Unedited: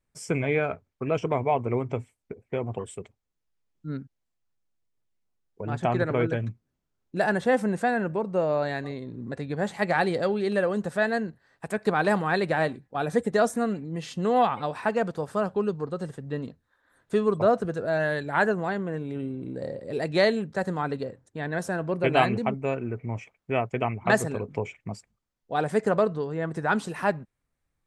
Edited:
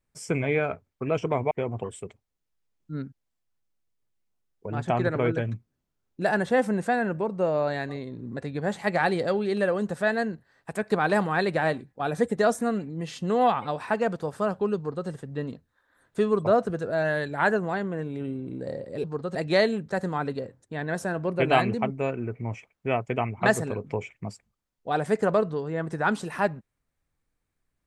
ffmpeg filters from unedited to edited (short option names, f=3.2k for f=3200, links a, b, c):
-filter_complex "[0:a]asplit=4[a][b][c][d];[a]atrim=end=1.512[e];[b]atrim=start=2.458:end=19.992[f];[c]atrim=start=15.718:end=16.032[g];[d]atrim=start=19.988[h];[e][f]acrossfade=d=0.004:c1=hsin:c2=hsin[i];[i][g]acrossfade=d=0.004:c1=hsin:c2=hsin[j];[j][h]acrossfade=d=0.004:c1=hsin:c2=hsin"